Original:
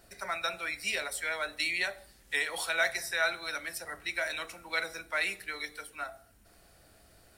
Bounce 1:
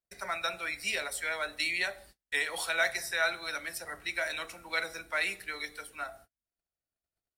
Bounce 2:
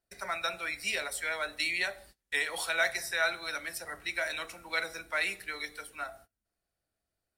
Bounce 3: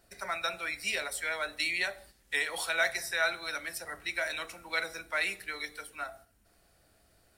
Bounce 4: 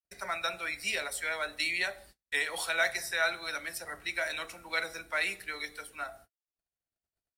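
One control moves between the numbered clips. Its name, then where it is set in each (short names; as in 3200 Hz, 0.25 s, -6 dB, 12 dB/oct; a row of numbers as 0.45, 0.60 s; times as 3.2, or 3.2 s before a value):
gate, range: -39, -27, -6, -59 dB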